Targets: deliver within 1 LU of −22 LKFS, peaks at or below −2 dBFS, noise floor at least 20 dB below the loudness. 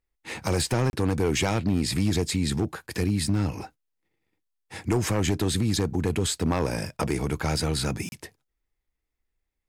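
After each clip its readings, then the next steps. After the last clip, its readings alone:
share of clipped samples 1.1%; peaks flattened at −17.0 dBFS; number of dropouts 2; longest dropout 31 ms; integrated loudness −26.5 LKFS; sample peak −17.0 dBFS; target loudness −22.0 LKFS
→ clipped peaks rebuilt −17 dBFS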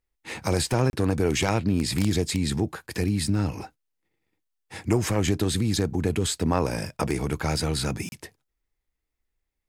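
share of clipped samples 0.0%; number of dropouts 2; longest dropout 31 ms
→ repair the gap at 0:00.90/0:08.09, 31 ms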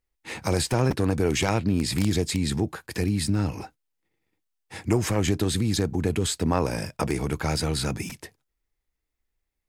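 number of dropouts 0; integrated loudness −25.5 LKFS; sample peak −8.0 dBFS; target loudness −22.0 LKFS
→ level +3.5 dB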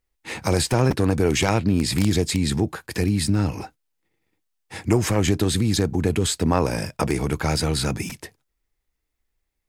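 integrated loudness −22.0 LKFS; sample peak −4.5 dBFS; background noise floor −77 dBFS

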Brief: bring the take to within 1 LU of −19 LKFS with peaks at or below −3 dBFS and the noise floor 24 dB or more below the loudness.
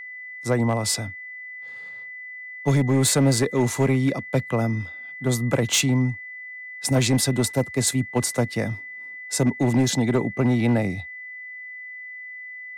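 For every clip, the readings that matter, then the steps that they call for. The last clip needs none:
share of clipped samples 0.9%; peaks flattened at −13.5 dBFS; interfering tone 2,000 Hz; level of the tone −35 dBFS; integrated loudness −22.5 LKFS; sample peak −13.5 dBFS; target loudness −19.0 LKFS
→ clipped peaks rebuilt −13.5 dBFS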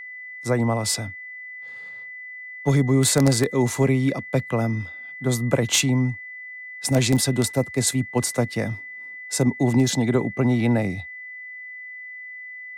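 share of clipped samples 0.0%; interfering tone 2,000 Hz; level of the tone −35 dBFS
→ notch filter 2,000 Hz, Q 30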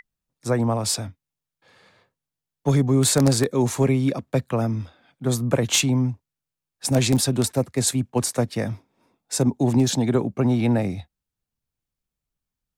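interfering tone none found; integrated loudness −22.0 LKFS; sample peak −4.0 dBFS; target loudness −19.0 LKFS
→ level +3 dB
brickwall limiter −3 dBFS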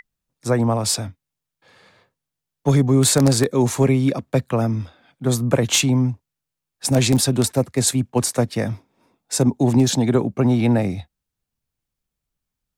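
integrated loudness −19.0 LKFS; sample peak −3.0 dBFS; background noise floor −84 dBFS

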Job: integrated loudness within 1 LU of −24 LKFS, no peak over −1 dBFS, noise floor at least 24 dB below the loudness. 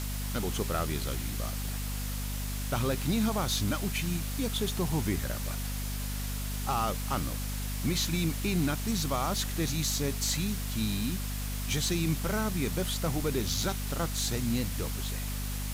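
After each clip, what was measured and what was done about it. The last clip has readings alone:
mains hum 50 Hz; hum harmonics up to 250 Hz; level of the hum −32 dBFS; background noise floor −34 dBFS; target noise floor −56 dBFS; integrated loudness −31.5 LKFS; sample peak −17.0 dBFS; target loudness −24.0 LKFS
→ mains-hum notches 50/100/150/200/250 Hz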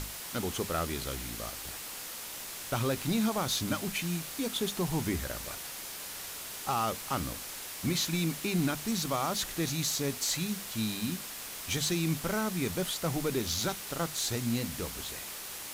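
mains hum none found; background noise floor −42 dBFS; target noise floor −57 dBFS
→ noise reduction from a noise print 15 dB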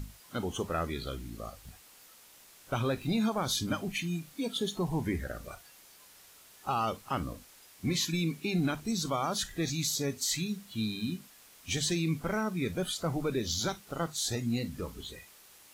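background noise floor −57 dBFS; integrated loudness −33.0 LKFS; sample peak −19.0 dBFS; target loudness −24.0 LKFS
→ level +9 dB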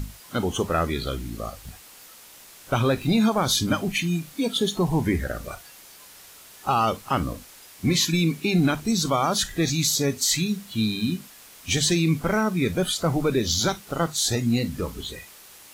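integrated loudness −24.0 LKFS; sample peak −10.0 dBFS; background noise floor −48 dBFS

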